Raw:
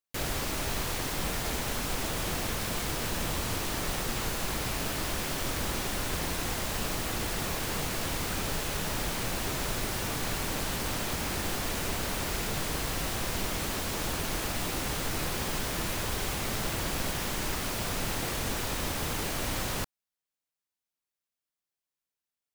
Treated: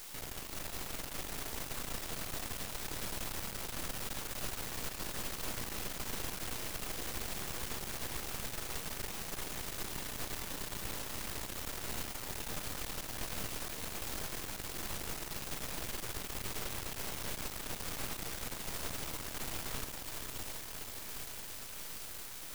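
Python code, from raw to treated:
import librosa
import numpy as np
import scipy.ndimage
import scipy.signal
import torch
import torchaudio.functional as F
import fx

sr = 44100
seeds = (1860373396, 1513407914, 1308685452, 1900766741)

y = fx.quant_dither(x, sr, seeds[0], bits=6, dither='triangular')
y = fx.echo_diffused(y, sr, ms=461, feedback_pct=76, wet_db=-4)
y = np.maximum(y, 0.0)
y = y * 10.0 ** (-9.0 / 20.0)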